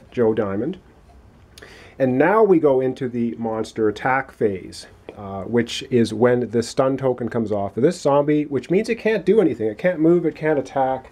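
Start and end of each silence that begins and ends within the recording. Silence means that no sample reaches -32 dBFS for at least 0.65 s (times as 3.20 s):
0.75–1.58 s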